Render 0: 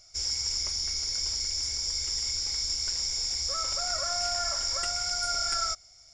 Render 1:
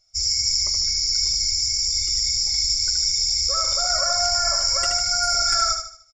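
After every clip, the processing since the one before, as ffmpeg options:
-af "afftdn=nr=20:nf=-42,aecho=1:1:75|150|225|300|375:0.501|0.19|0.0724|0.0275|0.0105,volume=8dB"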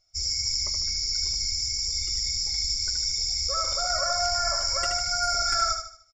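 -af "highshelf=f=4.8k:g=-8,volume=-1.5dB"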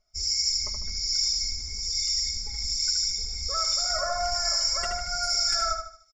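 -filter_complex "[0:a]aecho=1:1:4.7:0.61,acontrast=44,acrossover=split=1900[a][b];[a]aeval=exprs='val(0)*(1-0.7/2+0.7/2*cos(2*PI*1.2*n/s))':c=same[c];[b]aeval=exprs='val(0)*(1-0.7/2-0.7/2*cos(2*PI*1.2*n/s))':c=same[d];[c][d]amix=inputs=2:normalize=0,volume=-4.5dB"

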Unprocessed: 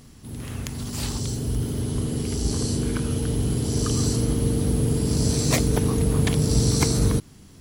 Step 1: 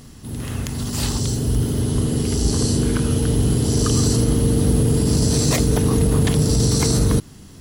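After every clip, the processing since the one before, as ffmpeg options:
-af "bandreject=f=2.3k:w=15,alimiter=limit=-14.5dB:level=0:latency=1:release=24,volume=6dB"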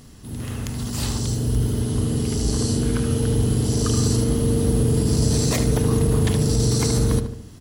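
-filter_complex "[0:a]asplit=2[a][b];[b]adelay=74,lowpass=f=2.3k:p=1,volume=-7dB,asplit=2[c][d];[d]adelay=74,lowpass=f=2.3k:p=1,volume=0.49,asplit=2[e][f];[f]adelay=74,lowpass=f=2.3k:p=1,volume=0.49,asplit=2[g][h];[h]adelay=74,lowpass=f=2.3k:p=1,volume=0.49,asplit=2[i][j];[j]adelay=74,lowpass=f=2.3k:p=1,volume=0.49,asplit=2[k][l];[l]adelay=74,lowpass=f=2.3k:p=1,volume=0.49[m];[a][c][e][g][i][k][m]amix=inputs=7:normalize=0,volume=-3.5dB"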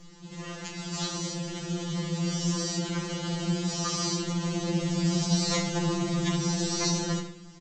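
-filter_complex "[0:a]aresample=16000,acrusher=bits=5:mode=log:mix=0:aa=0.000001,aresample=44100,asplit=2[a][b];[b]adelay=28,volume=-8.5dB[c];[a][c]amix=inputs=2:normalize=0,afftfilt=real='re*2.83*eq(mod(b,8),0)':imag='im*2.83*eq(mod(b,8),0)':win_size=2048:overlap=0.75"

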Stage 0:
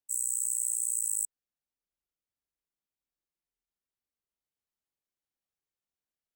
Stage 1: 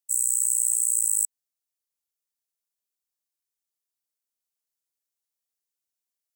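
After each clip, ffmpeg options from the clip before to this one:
-af "bass=f=250:g=-9,treble=f=4k:g=12,volume=-4dB"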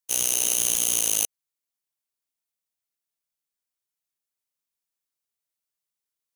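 -af "aeval=exprs='val(0)*sgn(sin(2*PI*1700*n/s))':c=same"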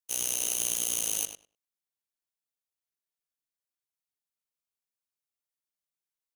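-filter_complex "[0:a]asplit=2[a][b];[b]adelay=100,lowpass=f=4k:p=1,volume=-7dB,asplit=2[c][d];[d]adelay=100,lowpass=f=4k:p=1,volume=0.15,asplit=2[e][f];[f]adelay=100,lowpass=f=4k:p=1,volume=0.15[g];[a][c][e][g]amix=inputs=4:normalize=0,volume=-7dB"

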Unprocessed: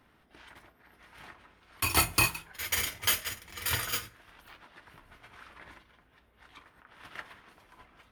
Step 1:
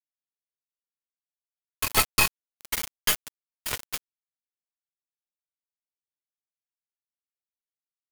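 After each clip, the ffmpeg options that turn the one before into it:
-af "aecho=1:1:4.7:0.54,aeval=exprs='val(0)*gte(abs(val(0)),0.0668)':c=same,aeval=exprs='0.355*(cos(1*acos(clip(val(0)/0.355,-1,1)))-cos(1*PI/2))+0.0708*(cos(4*acos(clip(val(0)/0.355,-1,1)))-cos(4*PI/2))':c=same,volume=2dB"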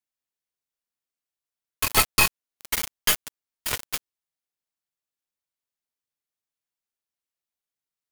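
-af "asoftclip=type=tanh:threshold=-7.5dB,volume=3.5dB"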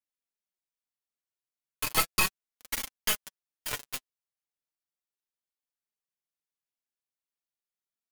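-af "flanger=delay=3.5:depth=4.8:regen=24:speed=0.36:shape=triangular,volume=-3dB"

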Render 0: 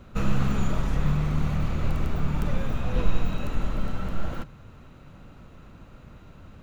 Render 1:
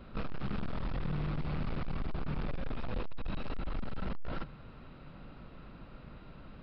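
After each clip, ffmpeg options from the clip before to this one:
-af "equalizer=f=89:t=o:w=0.33:g=-14.5,alimiter=limit=-19.5dB:level=0:latency=1:release=149,aresample=11025,asoftclip=type=hard:threshold=-29dB,aresample=44100,volume=-1.5dB"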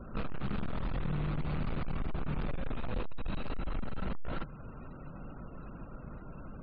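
-filter_complex "[0:a]afftfilt=real='re*gte(hypot(re,im),0.002)':imag='im*gte(hypot(re,im),0.002)':win_size=1024:overlap=0.75,asplit=2[a][b];[b]acompressor=threshold=-43dB:ratio=6,volume=1dB[c];[a][c]amix=inputs=2:normalize=0,volume=-1.5dB"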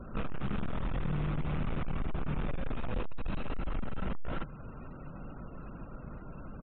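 -af "aresample=8000,aresample=44100,volume=1dB"

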